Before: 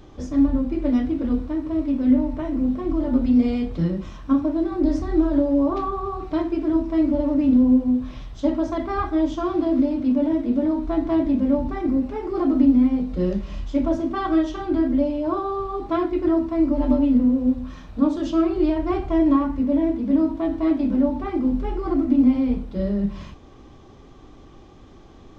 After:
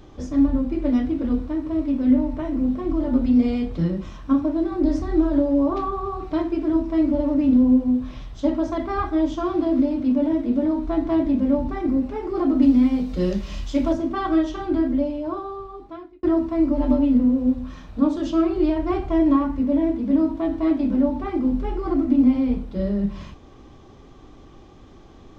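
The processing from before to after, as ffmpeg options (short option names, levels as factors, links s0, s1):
-filter_complex "[0:a]asettb=1/sr,asplit=3[s0][s1][s2];[s0]atrim=end=12.624[s3];[s1]atrim=start=12.62:end=13.93,asetpts=PTS-STARTPTS,afade=t=in:d=0.004:c=qsin,afade=t=out:st=1.306:d=0.004:c=qsin,highshelf=f=2600:g=11.5[s4];[s2]atrim=start=13.926[s5];[s3][s4]acrossfade=d=0.004:c1=hsin:c2=qsin[s6];[s6][s5]acrossfade=d=0.004:c1=qsin:c2=hsin,asplit=2[s7][s8];[s7]atrim=end=16.23,asetpts=PTS-STARTPTS,afade=t=out:st=14.73:d=1.5[s9];[s8]atrim=start=16.23,asetpts=PTS-STARTPTS,afade=t=in:d=0.004:c=hsin[s10];[s9][s10]concat=n=2:v=0:a=1"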